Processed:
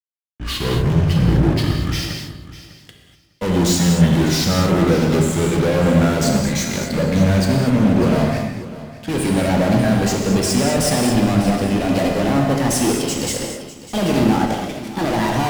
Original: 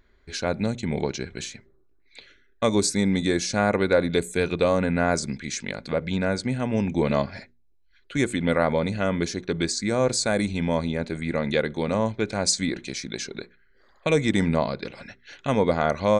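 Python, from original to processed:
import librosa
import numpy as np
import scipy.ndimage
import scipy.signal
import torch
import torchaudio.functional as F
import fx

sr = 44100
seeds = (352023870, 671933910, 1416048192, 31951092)

p1 = fx.speed_glide(x, sr, from_pct=69, to_pct=140)
p2 = fx.fuzz(p1, sr, gain_db=36.0, gate_db=-42.0)
p3 = fx.low_shelf(p2, sr, hz=490.0, db=7.5)
p4 = p3 + fx.echo_feedback(p3, sr, ms=601, feedback_pct=25, wet_db=-11.5, dry=0)
p5 = fx.rev_gated(p4, sr, seeds[0], gate_ms=270, shape='flat', drr_db=0.0)
p6 = fx.band_widen(p5, sr, depth_pct=40)
y = F.gain(torch.from_numpy(p6), -9.0).numpy()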